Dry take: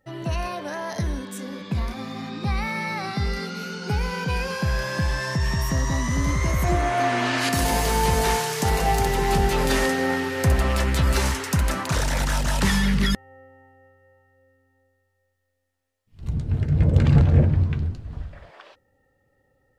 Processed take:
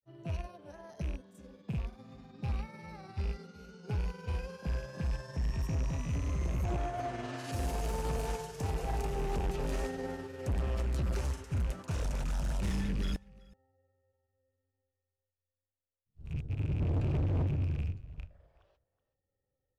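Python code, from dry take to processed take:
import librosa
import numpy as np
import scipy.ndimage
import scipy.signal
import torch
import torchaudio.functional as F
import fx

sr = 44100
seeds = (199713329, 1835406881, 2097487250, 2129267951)

y = fx.rattle_buzz(x, sr, strikes_db=-24.0, level_db=-18.0)
y = fx.high_shelf(y, sr, hz=6400.0, db=-11.5)
y = fx.granulator(y, sr, seeds[0], grain_ms=100.0, per_s=20.0, spray_ms=29.0, spread_st=0)
y = fx.graphic_eq_10(y, sr, hz=(250, 1000, 2000, 4000), db=(-6, -7, -10, -7))
y = y + 10.0 ** (-18.5 / 20.0) * np.pad(y, (int(374 * sr / 1000.0), 0))[:len(y)]
y = np.clip(10.0 ** (22.5 / 20.0) * y, -1.0, 1.0) / 10.0 ** (22.5 / 20.0)
y = fx.upward_expand(y, sr, threshold_db=-43.0, expansion=1.5)
y = y * librosa.db_to_amplitude(-5.0)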